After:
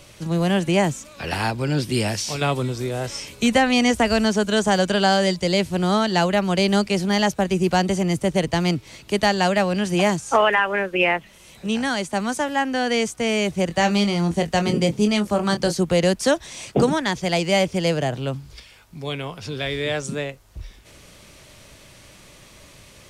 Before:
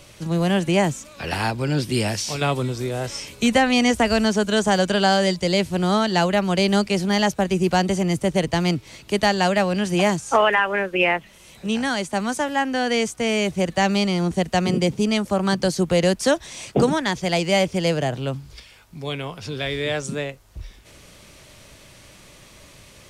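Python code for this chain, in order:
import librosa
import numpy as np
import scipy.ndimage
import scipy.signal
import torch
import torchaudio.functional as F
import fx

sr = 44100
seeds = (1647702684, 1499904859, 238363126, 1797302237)

y = fx.doubler(x, sr, ms=24.0, db=-8.0, at=(13.69, 15.76), fade=0.02)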